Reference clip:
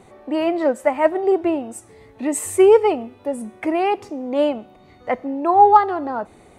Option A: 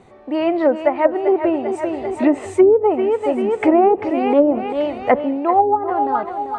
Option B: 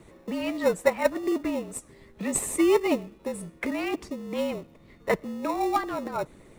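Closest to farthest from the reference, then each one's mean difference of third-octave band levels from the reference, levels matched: A, B; 6.0, 10.0 decibels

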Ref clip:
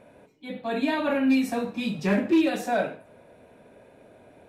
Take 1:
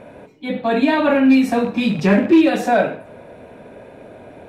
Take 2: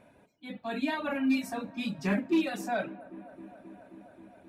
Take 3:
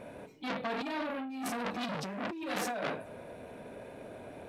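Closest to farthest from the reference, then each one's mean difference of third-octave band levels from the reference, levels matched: 1, 2, 3; 2.0, 3.0, 11.0 decibels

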